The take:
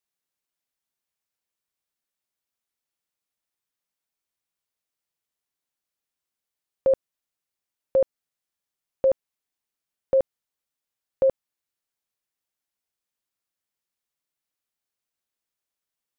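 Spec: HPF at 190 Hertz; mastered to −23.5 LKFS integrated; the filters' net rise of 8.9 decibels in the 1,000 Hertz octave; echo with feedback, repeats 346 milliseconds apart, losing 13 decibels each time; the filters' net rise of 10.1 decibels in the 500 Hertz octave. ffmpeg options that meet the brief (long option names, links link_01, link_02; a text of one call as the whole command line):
ffmpeg -i in.wav -af "highpass=190,equalizer=frequency=500:width_type=o:gain=8.5,equalizer=frequency=1000:width_type=o:gain=8.5,aecho=1:1:346|692|1038:0.224|0.0493|0.0108,volume=-6dB" out.wav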